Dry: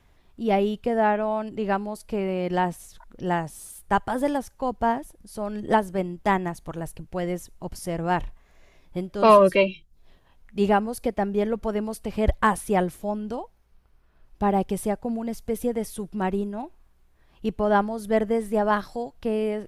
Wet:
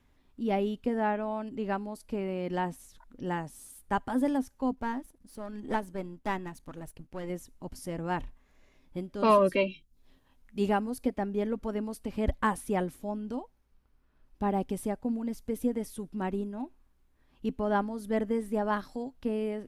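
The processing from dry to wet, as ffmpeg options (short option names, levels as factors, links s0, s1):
-filter_complex "[0:a]asettb=1/sr,asplit=3[s0][s1][s2];[s0]atrim=end=4.744[s3];[s1]atrim=start=4.74:end=7.3,asetpts=PTS-STARTPTS,afade=t=in:d=0.004:c=qsin,afade=t=out:st=2.556:d=0.004:c=qsin,aeval=exprs='if(lt(val(0),0),0.447*val(0),val(0))':c=same[s4];[s2]atrim=start=7.296[s5];[s3][s4]acrossfade=d=0.004:c1=hsin:c2=qsin[s6];[s6][s5]acrossfade=d=0.004:c1=qsin:c2=hsin,asettb=1/sr,asplit=3[s7][s8][s9];[s7]atrim=end=9.704[s10];[s8]atrim=start=9.7:end=10.9,asetpts=PTS-STARTPTS,afade=t=in:d=0.004:c=qsin,afade=t=out:st=1.196:d=0.004:c=qsin,highshelf=f=4800:g=5.5[s11];[s9]atrim=start=10.896[s12];[s10][s11]acrossfade=d=0.004:c1=hsin:c2=qsin[s13];[s13][s12]acrossfade=d=0.004:c1=qsin:c2=hsin,equalizer=f=260:t=o:w=0.26:g=12,bandreject=f=690:w=12,volume=0.422"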